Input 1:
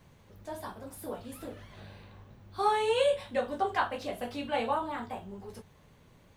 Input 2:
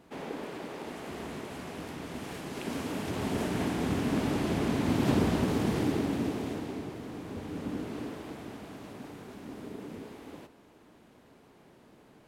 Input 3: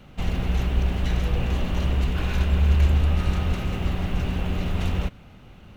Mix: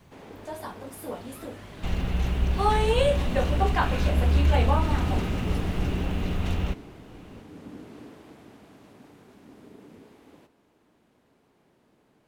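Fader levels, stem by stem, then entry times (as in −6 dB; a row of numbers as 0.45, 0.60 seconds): +3.0, −7.0, −2.5 decibels; 0.00, 0.00, 1.65 seconds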